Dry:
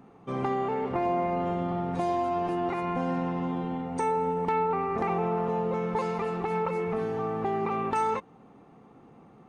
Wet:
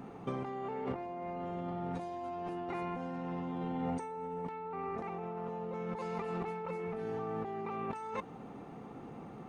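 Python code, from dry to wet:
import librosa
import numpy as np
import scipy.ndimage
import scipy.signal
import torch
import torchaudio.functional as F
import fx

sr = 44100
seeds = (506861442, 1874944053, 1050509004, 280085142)

y = fx.notch(x, sr, hz=1100.0, q=16.0)
y = fx.over_compress(y, sr, threshold_db=-37.0, ratio=-1.0)
y = y * librosa.db_to_amplitude(-2.0)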